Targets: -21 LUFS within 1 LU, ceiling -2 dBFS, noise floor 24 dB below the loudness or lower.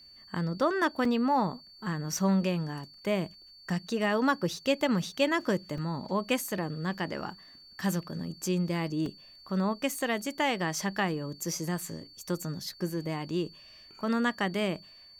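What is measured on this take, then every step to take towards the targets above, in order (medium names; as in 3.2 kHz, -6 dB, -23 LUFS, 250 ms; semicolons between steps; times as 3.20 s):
dropouts 3; longest dropout 2.8 ms; steady tone 4.5 kHz; tone level -51 dBFS; loudness -31.0 LUFS; peak level -14.0 dBFS; loudness target -21.0 LUFS
-> interpolate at 1.05/5.78/9.06 s, 2.8 ms; band-stop 4.5 kHz, Q 30; trim +10 dB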